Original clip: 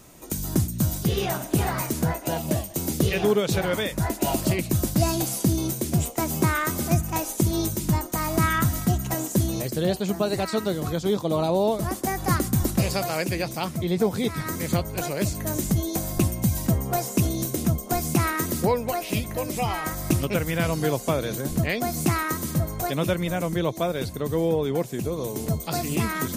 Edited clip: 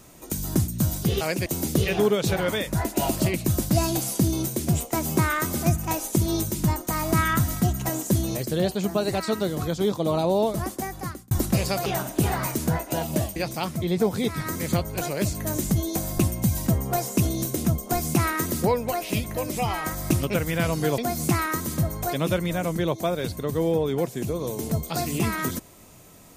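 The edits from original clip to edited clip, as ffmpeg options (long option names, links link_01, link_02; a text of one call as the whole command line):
ffmpeg -i in.wav -filter_complex "[0:a]asplit=7[link_01][link_02][link_03][link_04][link_05][link_06][link_07];[link_01]atrim=end=1.212[link_08];[link_02]atrim=start=13.108:end=13.362[link_09];[link_03]atrim=start=2.708:end=12.56,asetpts=PTS-STARTPTS,afade=type=out:start_time=9.062:duration=0.79[link_10];[link_04]atrim=start=12.56:end=13.112,asetpts=PTS-STARTPTS,afade=type=in:duration=0.004:curve=hsin[link_11];[link_05]atrim=start=1.208:end=2.712[link_12];[link_06]atrim=start=13.358:end=20.982[link_13];[link_07]atrim=start=21.748[link_14];[link_08][link_09]acrossfade=duration=0.004:curve1=hsin:curve2=hsin[link_15];[link_10][link_11]concat=n=2:v=0:a=1[link_16];[link_15][link_16]acrossfade=duration=0.004:curve1=hsin:curve2=hsin[link_17];[link_17][link_12]acrossfade=duration=0.004:curve1=hsin:curve2=hsin[link_18];[link_18][link_13]acrossfade=duration=0.004:curve1=hsin:curve2=hsin[link_19];[link_19][link_14]acrossfade=duration=0.004:curve1=hsin:curve2=hsin" out.wav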